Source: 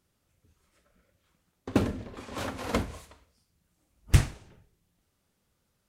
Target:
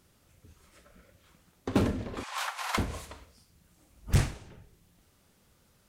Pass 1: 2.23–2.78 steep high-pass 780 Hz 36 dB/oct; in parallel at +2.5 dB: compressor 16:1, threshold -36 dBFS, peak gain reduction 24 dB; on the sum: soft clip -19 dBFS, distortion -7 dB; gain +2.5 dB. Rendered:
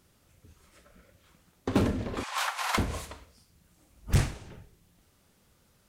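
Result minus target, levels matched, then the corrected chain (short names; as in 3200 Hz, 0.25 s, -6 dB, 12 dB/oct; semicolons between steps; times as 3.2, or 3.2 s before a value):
compressor: peak gain reduction -11 dB
2.23–2.78 steep high-pass 780 Hz 36 dB/oct; in parallel at +2.5 dB: compressor 16:1, threshold -48 dBFS, peak gain reduction 35.5 dB; on the sum: soft clip -19 dBFS, distortion -7 dB; gain +2.5 dB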